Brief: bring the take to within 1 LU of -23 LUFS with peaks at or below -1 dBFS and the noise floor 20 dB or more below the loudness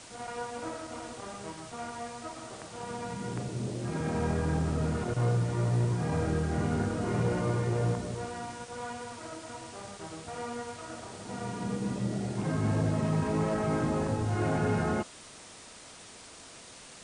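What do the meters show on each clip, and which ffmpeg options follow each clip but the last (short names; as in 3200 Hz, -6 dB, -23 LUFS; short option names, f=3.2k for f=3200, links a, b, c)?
noise floor -50 dBFS; noise floor target -53 dBFS; loudness -32.5 LUFS; peak -18.0 dBFS; loudness target -23.0 LUFS
-> -af "afftdn=nr=6:nf=-50"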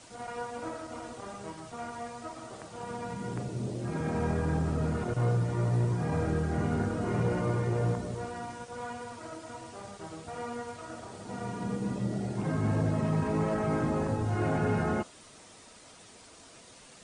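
noise floor -53 dBFS; loudness -32.5 LUFS; peak -18.0 dBFS; loudness target -23.0 LUFS
-> -af "volume=9.5dB"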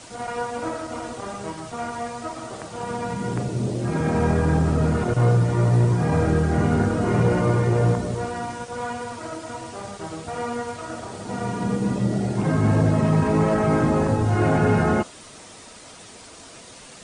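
loudness -23.0 LUFS; peak -8.5 dBFS; noise floor -44 dBFS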